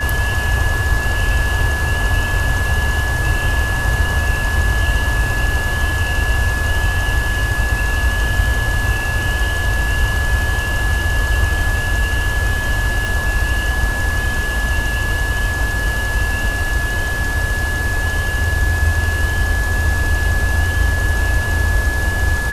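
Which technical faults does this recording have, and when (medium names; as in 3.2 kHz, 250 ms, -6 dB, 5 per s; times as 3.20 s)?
whine 1.7 kHz -21 dBFS
13.05 s: pop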